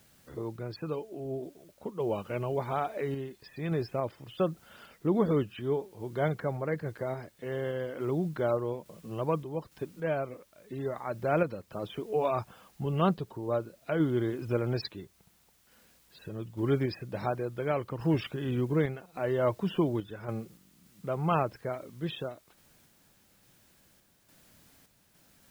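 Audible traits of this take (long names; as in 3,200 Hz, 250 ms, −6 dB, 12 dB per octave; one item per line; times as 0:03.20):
a quantiser's noise floor 10 bits, dither triangular
sample-and-hold tremolo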